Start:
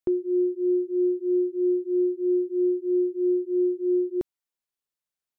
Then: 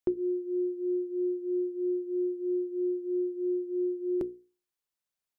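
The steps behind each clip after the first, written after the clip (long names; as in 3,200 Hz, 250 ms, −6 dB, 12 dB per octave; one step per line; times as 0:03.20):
mains-hum notches 60/120/180/240/300/360/420/480 Hz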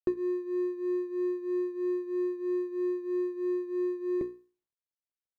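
running median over 41 samples
notch filter 730 Hz, Q 16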